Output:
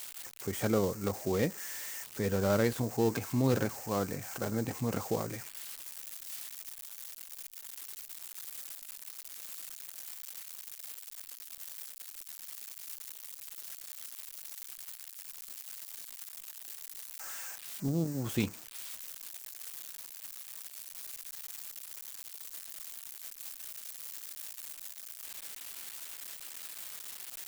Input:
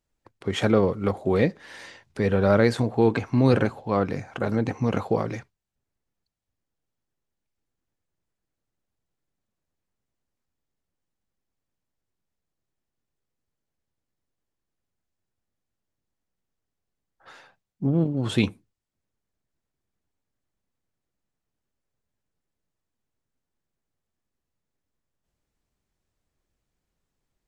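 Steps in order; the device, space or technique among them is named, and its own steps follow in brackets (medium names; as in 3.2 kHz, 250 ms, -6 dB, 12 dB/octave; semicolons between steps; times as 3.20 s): 17.88–18.39 s: high-pass 57 Hz 12 dB/octave; budget class-D amplifier (dead-time distortion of 0.14 ms; zero-crossing glitches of -18 dBFS); trim -9 dB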